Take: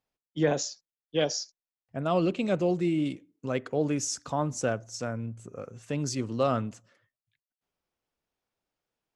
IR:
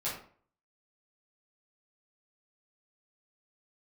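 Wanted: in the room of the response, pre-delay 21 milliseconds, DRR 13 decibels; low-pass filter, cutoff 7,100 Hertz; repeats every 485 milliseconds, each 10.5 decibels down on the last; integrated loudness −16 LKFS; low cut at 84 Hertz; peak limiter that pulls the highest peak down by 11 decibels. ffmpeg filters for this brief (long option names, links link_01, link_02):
-filter_complex "[0:a]highpass=84,lowpass=7100,alimiter=limit=-23dB:level=0:latency=1,aecho=1:1:485|970|1455:0.299|0.0896|0.0269,asplit=2[link_01][link_02];[1:a]atrim=start_sample=2205,adelay=21[link_03];[link_02][link_03]afir=irnorm=-1:irlink=0,volume=-17dB[link_04];[link_01][link_04]amix=inputs=2:normalize=0,volume=18dB"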